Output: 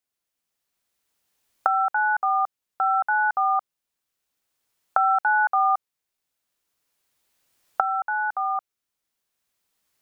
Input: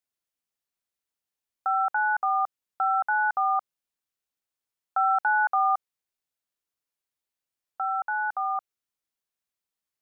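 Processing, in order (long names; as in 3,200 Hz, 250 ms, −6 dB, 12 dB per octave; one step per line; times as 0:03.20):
camcorder AGC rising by 9.6 dB per second
level +2.5 dB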